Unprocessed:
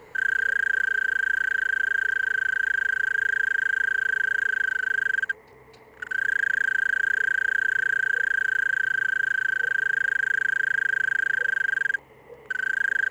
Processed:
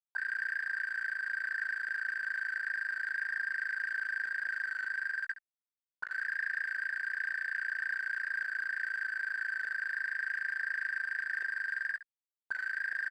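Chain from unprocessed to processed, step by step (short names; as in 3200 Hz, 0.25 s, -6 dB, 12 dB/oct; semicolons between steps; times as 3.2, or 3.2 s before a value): Schmitt trigger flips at -30.5 dBFS; auto-wah 770–1800 Hz, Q 7.9, up, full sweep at -25.5 dBFS; early reflections 19 ms -13 dB, 68 ms -14.5 dB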